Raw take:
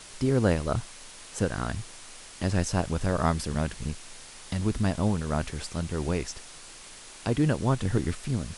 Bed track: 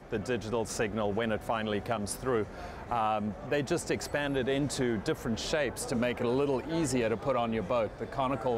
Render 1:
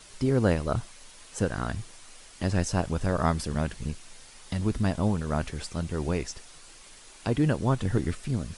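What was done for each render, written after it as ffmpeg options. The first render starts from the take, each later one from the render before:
-af "afftdn=nr=6:nf=-47"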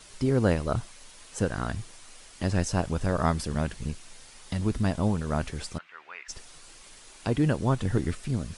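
-filter_complex "[0:a]asplit=3[a][b][c];[a]afade=t=out:st=5.77:d=0.02[d];[b]asuperpass=centerf=1800:order=4:qfactor=1.2,afade=t=in:st=5.77:d=0.02,afade=t=out:st=6.28:d=0.02[e];[c]afade=t=in:st=6.28:d=0.02[f];[d][e][f]amix=inputs=3:normalize=0"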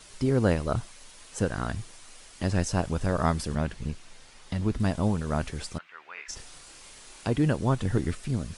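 -filter_complex "[0:a]asettb=1/sr,asplit=3[a][b][c];[a]atrim=end=3.554[d];[b]atrim=start=3.55:end=4.8,asetpts=PTS-STARTPTS,afade=t=in:d=0.004:c=qsin,afade=t=out:st=1.246:d=0.004:c=qsin,highshelf=f=6.8k:g=-10[e];[c]atrim=start=4.796[f];[d][e]acrossfade=d=0.004:c1=hsin:c2=qsin[g];[g][f]acrossfade=d=0.004:c1=qsin:c2=hsin,asettb=1/sr,asplit=3[h][i][j];[h]atrim=end=6.144[k];[i]atrim=start=6.14:end=7.28,asetpts=PTS-STARTPTS,afade=t=in:d=0.004:c=qsin,afade=t=out:st=1.136:d=0.004:c=qsin,asplit=2[l][m];[m]adelay=29,volume=-3dB[n];[l][n]amix=inputs=2:normalize=0,atrim=end_sample=50274[o];[j]atrim=start=7.276[p];[k][o]acrossfade=d=0.004:c1=hsin:c2=qsin[q];[q][p]acrossfade=d=0.004:c1=qsin:c2=hsin"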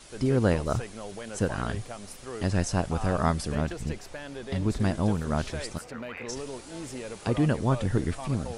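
-filter_complex "[1:a]volume=-9dB[a];[0:a][a]amix=inputs=2:normalize=0"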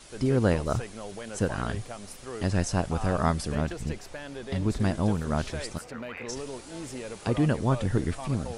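-af anull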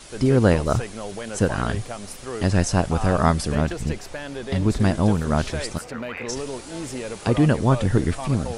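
-af "volume=6.5dB"

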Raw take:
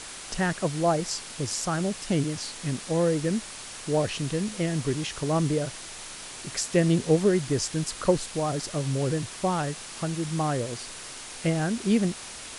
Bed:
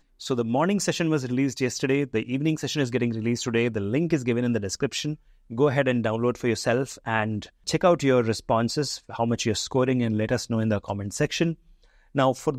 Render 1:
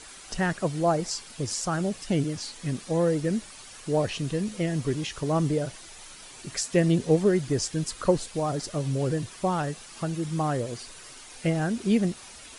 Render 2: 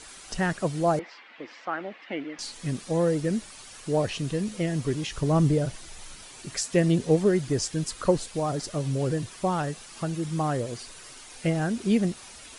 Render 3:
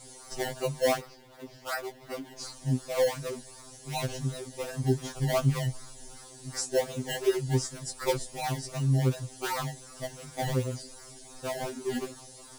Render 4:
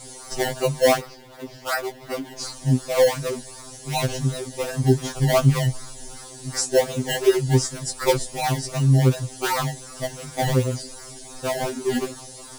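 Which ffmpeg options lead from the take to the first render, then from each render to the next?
-af "afftdn=nr=9:nf=-41"
-filter_complex "[0:a]asettb=1/sr,asplit=3[a][b][c];[a]atrim=end=0.994[d];[b]atrim=start=0.99:end=2.39,asetpts=PTS-STARTPTS,afade=t=in:d=0.004:c=qsin,afade=t=out:st=1.396:d=0.004:c=qsin,highpass=f=310:w=0.5412,highpass=f=310:w=1.3066,equalizer=f=410:t=q:w=4:g=-9,equalizer=f=590:t=q:w=4:g=-3,equalizer=f=2k:t=q:w=4:g=7,lowpass=f=2.9k:w=0.5412,lowpass=f=2.9k:w=1.3066[e];[c]atrim=start=2.386[f];[d][e]acrossfade=d=0.004:c1=hsin:c2=qsin[g];[g][f]acrossfade=d=0.004:c1=qsin:c2=hsin,asettb=1/sr,asplit=3[h][i][j];[h]atrim=end=5.124[k];[i]atrim=start=5.12:end=6.22,asetpts=PTS-STARTPTS,afade=t=in:d=0.004:c=qsin,afade=t=out:st=1.096:d=0.004:c=qsin,lowshelf=f=160:g=9.5[l];[j]atrim=start=6.216[m];[k][l]acrossfade=d=0.004:c1=hsin:c2=qsin[n];[n][m]acrossfade=d=0.004:c1=qsin:c2=hsin"
-filter_complex "[0:a]acrossover=split=430|3800[a][b][c];[b]acrusher=samples=25:mix=1:aa=0.000001:lfo=1:lforange=25:lforate=2.7[d];[a][d][c]amix=inputs=3:normalize=0,afftfilt=real='re*2.45*eq(mod(b,6),0)':imag='im*2.45*eq(mod(b,6),0)':win_size=2048:overlap=0.75"
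-af "volume=8.5dB"

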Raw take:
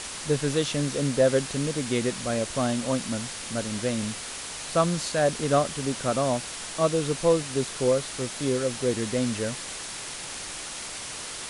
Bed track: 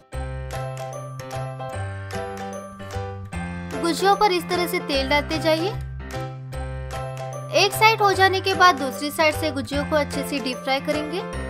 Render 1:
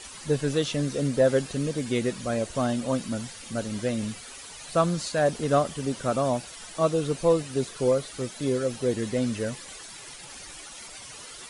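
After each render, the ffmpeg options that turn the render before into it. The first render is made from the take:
-af "afftdn=nr=12:nf=-37"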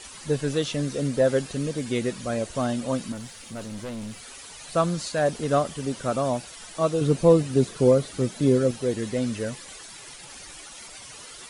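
-filter_complex "[0:a]asettb=1/sr,asplit=3[a][b][c];[a]atrim=end=3.124[d];[b]atrim=start=3.12:end=4.2,asetpts=PTS-STARTPTS,afade=t=in:d=0.004:c=qsin,afade=t=out:st=1.076:d=0.004:c=qsin,aeval=exprs='(tanh(35.5*val(0)+0.35)-tanh(0.35))/35.5':c=same[e];[c]atrim=start=4.196[f];[d][e]acrossfade=d=0.004:c1=hsin:c2=qsin[g];[g][f]acrossfade=d=0.004:c1=qsin:c2=hsin,asettb=1/sr,asplit=3[h][i][j];[h]atrim=end=7.014[k];[i]atrim=start=7.01:end=8.71,asetpts=PTS-STARTPTS,afade=t=in:d=0.004:c=qsin,afade=t=out:st=1.696:d=0.004:c=qsin,equalizer=f=170:w=0.41:g=9[l];[j]atrim=start=8.706[m];[k][l]acrossfade=d=0.004:c1=hsin:c2=qsin[n];[n][m]acrossfade=d=0.004:c1=qsin:c2=hsin"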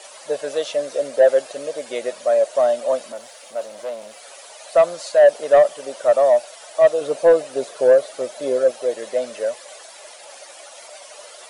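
-af "highpass=f=600:t=q:w=6.9,asoftclip=type=tanh:threshold=-5dB"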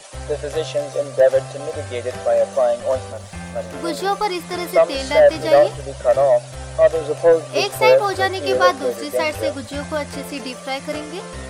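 -filter_complex "[1:a]volume=-3dB[a];[0:a][a]amix=inputs=2:normalize=0"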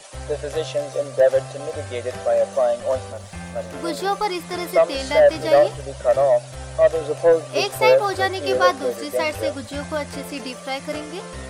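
-af "volume=-2dB"

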